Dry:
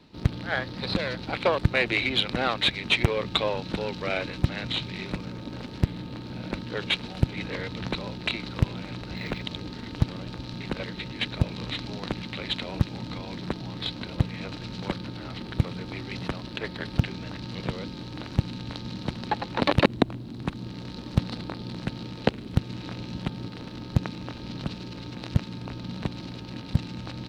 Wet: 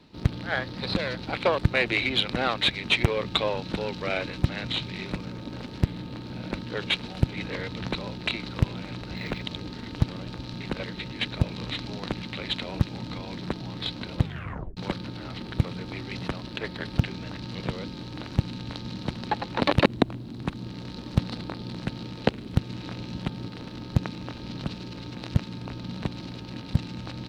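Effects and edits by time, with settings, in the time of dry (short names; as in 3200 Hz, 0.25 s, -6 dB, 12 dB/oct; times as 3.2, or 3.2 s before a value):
14.21 tape stop 0.56 s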